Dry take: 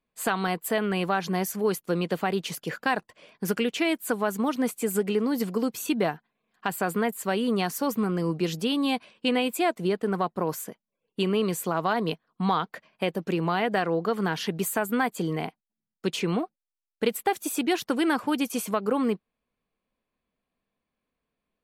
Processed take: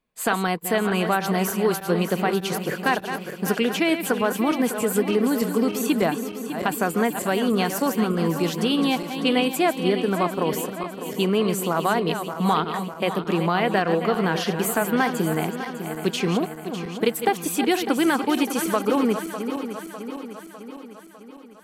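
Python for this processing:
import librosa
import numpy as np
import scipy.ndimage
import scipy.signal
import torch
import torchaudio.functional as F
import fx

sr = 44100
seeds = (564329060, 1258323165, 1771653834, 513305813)

y = fx.reverse_delay_fb(x, sr, ms=301, feedback_pct=74, wet_db=-9.0)
y = F.gain(torch.from_numpy(y), 3.5).numpy()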